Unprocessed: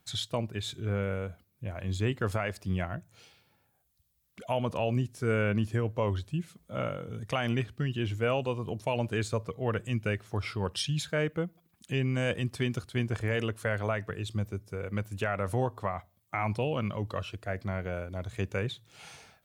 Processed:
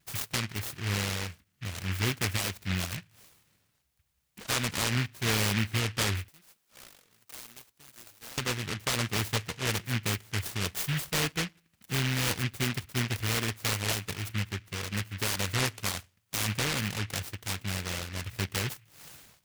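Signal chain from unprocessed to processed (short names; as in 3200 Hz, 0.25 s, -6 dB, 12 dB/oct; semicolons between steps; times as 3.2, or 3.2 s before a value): 6.28–8.38 differentiator; vibrato 0.32 Hz 9.6 cents; noise-modulated delay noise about 2100 Hz, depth 0.47 ms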